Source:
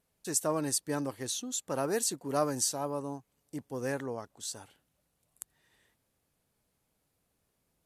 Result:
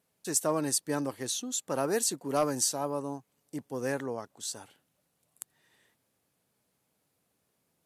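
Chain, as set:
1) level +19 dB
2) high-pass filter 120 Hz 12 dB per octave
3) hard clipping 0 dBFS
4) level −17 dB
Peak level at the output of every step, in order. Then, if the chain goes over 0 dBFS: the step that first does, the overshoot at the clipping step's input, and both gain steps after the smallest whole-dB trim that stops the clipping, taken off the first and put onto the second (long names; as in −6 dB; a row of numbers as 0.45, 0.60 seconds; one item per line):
+3.5, +4.0, 0.0, −17.0 dBFS
step 1, 4.0 dB
step 1 +15 dB, step 4 −13 dB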